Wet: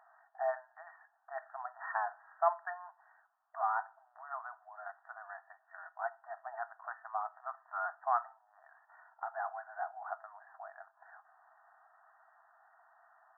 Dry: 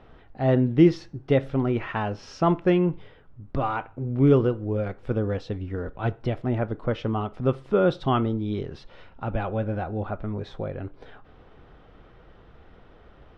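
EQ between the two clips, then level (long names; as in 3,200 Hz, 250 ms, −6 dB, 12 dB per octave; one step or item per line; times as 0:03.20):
linear-phase brick-wall high-pass 640 Hz
linear-phase brick-wall low-pass 1,900 Hz
−4.5 dB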